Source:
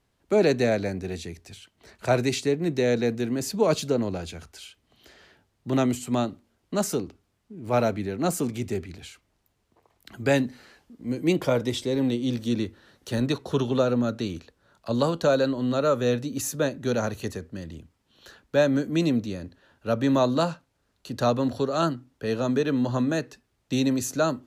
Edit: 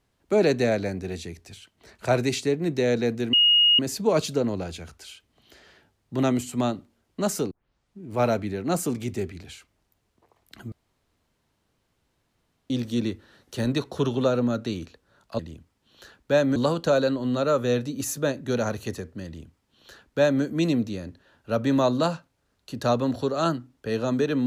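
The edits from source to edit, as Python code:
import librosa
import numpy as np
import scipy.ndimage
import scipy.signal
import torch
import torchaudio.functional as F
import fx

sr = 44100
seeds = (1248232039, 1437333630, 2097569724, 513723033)

y = fx.edit(x, sr, fx.insert_tone(at_s=3.33, length_s=0.46, hz=2870.0, db=-14.5),
    fx.tape_start(start_s=7.05, length_s=0.51),
    fx.room_tone_fill(start_s=10.26, length_s=1.98),
    fx.duplicate(start_s=17.63, length_s=1.17, to_s=14.93), tone=tone)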